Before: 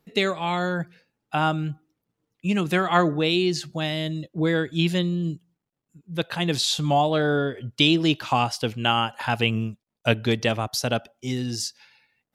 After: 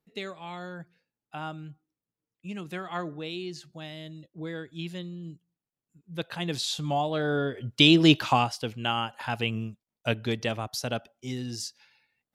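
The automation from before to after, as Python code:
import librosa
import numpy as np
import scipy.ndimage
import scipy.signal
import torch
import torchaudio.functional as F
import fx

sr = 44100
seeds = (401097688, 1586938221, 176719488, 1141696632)

y = fx.gain(x, sr, db=fx.line((5.2, -14.0), (6.12, -7.0), (7.12, -7.0), (8.17, 4.0), (8.57, -6.5)))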